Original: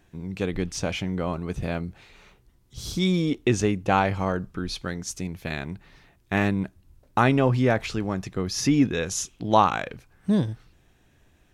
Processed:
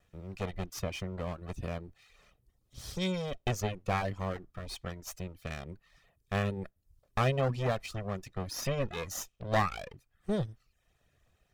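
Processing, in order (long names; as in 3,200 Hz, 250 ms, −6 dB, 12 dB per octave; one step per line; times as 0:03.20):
lower of the sound and its delayed copy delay 1.6 ms
reverb reduction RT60 0.53 s
level −7.5 dB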